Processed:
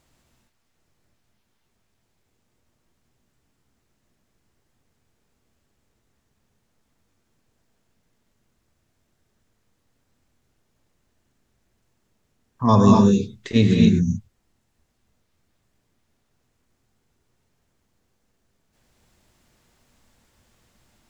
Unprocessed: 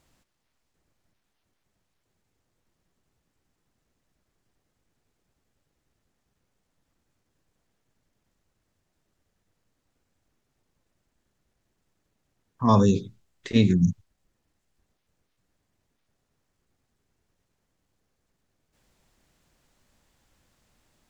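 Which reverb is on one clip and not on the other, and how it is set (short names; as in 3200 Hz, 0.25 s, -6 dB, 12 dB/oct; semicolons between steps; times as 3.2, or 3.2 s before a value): non-linear reverb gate 0.29 s rising, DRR 0 dB; gain +2 dB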